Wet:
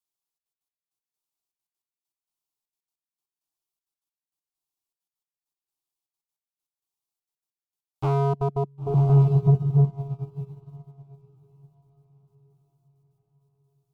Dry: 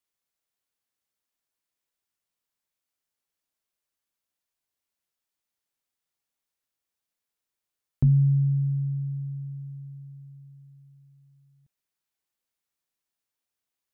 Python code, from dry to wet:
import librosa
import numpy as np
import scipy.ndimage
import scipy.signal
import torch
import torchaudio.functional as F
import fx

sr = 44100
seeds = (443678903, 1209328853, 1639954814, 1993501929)

y = np.clip(x, -10.0 ** (-27.0 / 20.0), 10.0 ** (-27.0 / 20.0))
y = fx.step_gate(y, sr, bpm=198, pattern='xxxxx.x.x...x..', floor_db=-24.0, edge_ms=4.5)
y = fx.echo_diffused(y, sr, ms=1024, feedback_pct=45, wet_db=-6)
y = fx.dynamic_eq(y, sr, hz=210.0, q=0.99, threshold_db=-44.0, ratio=4.0, max_db=5)
y = y + 10.0 ** (-22.0 / 20.0) * np.pad(y, (int(761 * sr / 1000.0), 0))[:len(y)]
y = fx.fold_sine(y, sr, drive_db=8, ceiling_db=-21.0)
y = fx.fixed_phaser(y, sr, hz=350.0, stages=8)
y = fx.upward_expand(y, sr, threshold_db=-38.0, expansion=2.5)
y = y * librosa.db_to_amplitude(9.0)